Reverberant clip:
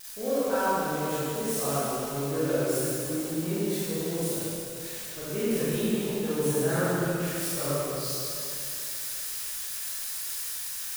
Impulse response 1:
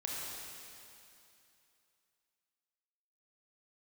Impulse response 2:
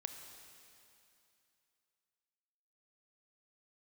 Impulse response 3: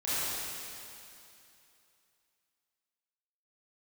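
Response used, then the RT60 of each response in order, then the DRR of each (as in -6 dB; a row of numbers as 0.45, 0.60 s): 3; 2.7, 2.7, 2.7 s; -4.0, 5.5, -13.5 dB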